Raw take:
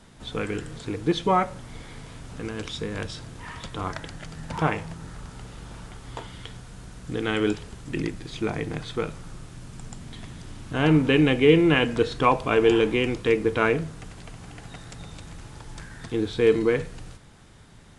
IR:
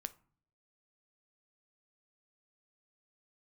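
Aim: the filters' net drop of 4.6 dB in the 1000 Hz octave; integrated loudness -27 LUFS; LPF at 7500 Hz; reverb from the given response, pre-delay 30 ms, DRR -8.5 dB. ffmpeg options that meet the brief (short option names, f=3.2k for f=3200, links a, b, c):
-filter_complex "[0:a]lowpass=7.5k,equalizer=f=1k:t=o:g=-6,asplit=2[a][b];[1:a]atrim=start_sample=2205,adelay=30[c];[b][c]afir=irnorm=-1:irlink=0,volume=11.5dB[d];[a][d]amix=inputs=2:normalize=0,volume=-10.5dB"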